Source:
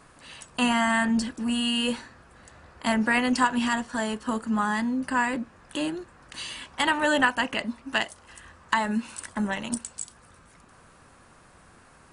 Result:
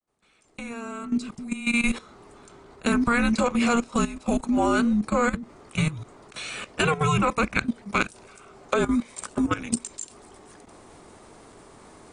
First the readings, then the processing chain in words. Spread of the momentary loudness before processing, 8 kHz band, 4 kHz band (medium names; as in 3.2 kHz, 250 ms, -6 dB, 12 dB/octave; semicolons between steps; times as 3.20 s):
14 LU, +1.5 dB, -5.0 dB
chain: fade-in on the opening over 2.28 s; level held to a coarse grid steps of 14 dB; frequency shift -470 Hz; trim +7 dB